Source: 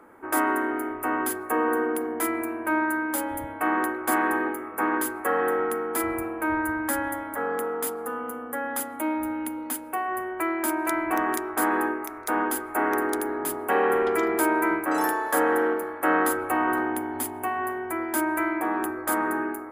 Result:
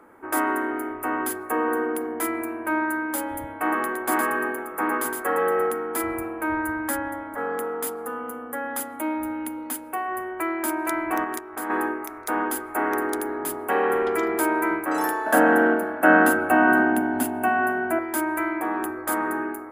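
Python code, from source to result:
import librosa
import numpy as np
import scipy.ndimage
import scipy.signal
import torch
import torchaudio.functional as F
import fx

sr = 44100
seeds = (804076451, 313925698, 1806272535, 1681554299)

y = fx.echo_single(x, sr, ms=114, db=-4.5, at=(3.53, 5.71))
y = fx.high_shelf(y, sr, hz=3200.0, db=-10.5, at=(6.96, 7.37), fade=0.02)
y = fx.level_steps(y, sr, step_db=10, at=(11.24, 11.7))
y = fx.small_body(y, sr, hz=(220.0, 650.0, 1500.0, 2700.0), ring_ms=35, db=15, at=(15.26, 17.99))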